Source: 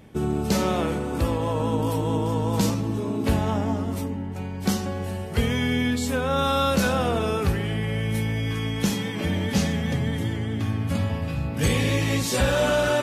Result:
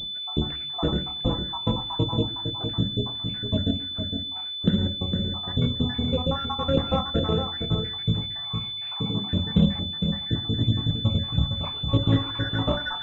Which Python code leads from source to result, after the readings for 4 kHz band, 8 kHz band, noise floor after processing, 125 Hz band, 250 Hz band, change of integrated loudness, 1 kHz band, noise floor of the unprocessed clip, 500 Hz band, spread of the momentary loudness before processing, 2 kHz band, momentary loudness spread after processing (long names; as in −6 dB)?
+7.5 dB, below −25 dB, −33 dBFS, −0.5 dB, −2.0 dB, −1.0 dB, −6.0 dB, −31 dBFS, −6.0 dB, 6 LU, −10.0 dB, 5 LU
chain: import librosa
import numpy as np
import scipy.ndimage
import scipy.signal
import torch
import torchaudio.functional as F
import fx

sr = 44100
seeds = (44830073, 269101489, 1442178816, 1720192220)

y = fx.spec_dropout(x, sr, seeds[0], share_pct=79)
y = fx.low_shelf(y, sr, hz=200.0, db=8.0)
y = y + 10.0 ** (-7.0 / 20.0) * np.pad(y, (int(459 * sr / 1000.0), 0))[:len(y)]
y = fx.room_shoebox(y, sr, seeds[1], volume_m3=200.0, walls='furnished', distance_m=0.63)
y = fx.pwm(y, sr, carrier_hz=3500.0)